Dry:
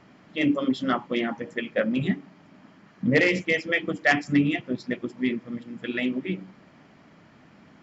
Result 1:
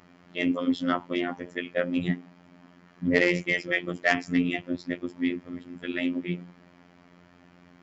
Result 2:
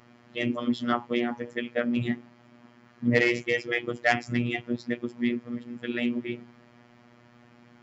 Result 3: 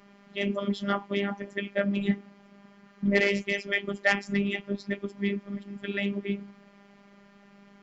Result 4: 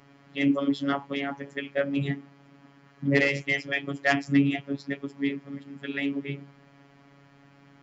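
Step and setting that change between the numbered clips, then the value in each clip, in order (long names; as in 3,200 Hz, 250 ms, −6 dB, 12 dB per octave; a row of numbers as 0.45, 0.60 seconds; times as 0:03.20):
phases set to zero, frequency: 88, 120, 200, 140 Hertz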